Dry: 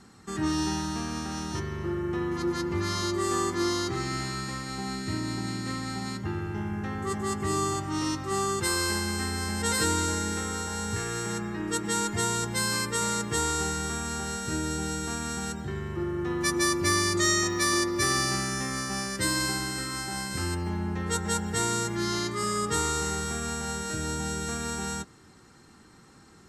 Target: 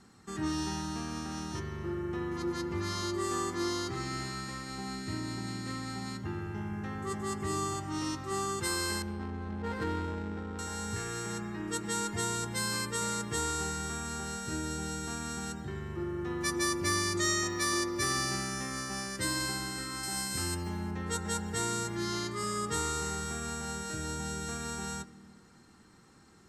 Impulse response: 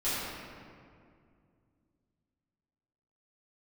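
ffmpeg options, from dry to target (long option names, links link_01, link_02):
-filter_complex "[0:a]asettb=1/sr,asplit=3[link_01][link_02][link_03];[link_01]atrim=end=9.024[link_04];[link_02]atrim=start=9.02:end=10.59,asetpts=PTS-STARTPTS,afade=type=in:duration=0.004:curve=qsin,afade=type=out:start_time=1.566:duration=0.004:curve=qsin,adynamicsmooth=sensitivity=1.5:basefreq=520[link_05];[link_03]atrim=start=10.586[link_06];[link_04][link_05]acrossfade=duration=0.004:curve1=hsin:curve2=qsin[link_07];[link_07][link_06]acrossfade=duration=0.004:curve1=qsin:curve2=hsin,asettb=1/sr,asplit=3[link_08][link_09][link_10];[link_08]atrim=end=20.034[link_11];[link_09]atrim=start=20.03:end=20.91,asetpts=PTS-STARTPTS,afade=type=in:duration=0.004:curve=qsin,afade=type=out:start_time=0.876:duration=0.004:curve=qsin,highshelf=frequency=4700:gain=10[link_12];[link_10]atrim=start=20.906[link_13];[link_11][link_12]acrossfade=duration=0.004:curve1=hsin:curve2=qsin[link_14];[link_14][link_13]acrossfade=duration=0.004:curve1=qsin:curve2=hsin,asplit=2[link_15][link_16];[1:a]atrim=start_sample=2205[link_17];[link_16][link_17]afir=irnorm=-1:irlink=0,volume=-27.5dB[link_18];[link_15][link_18]amix=inputs=2:normalize=0,volume=-5.5dB"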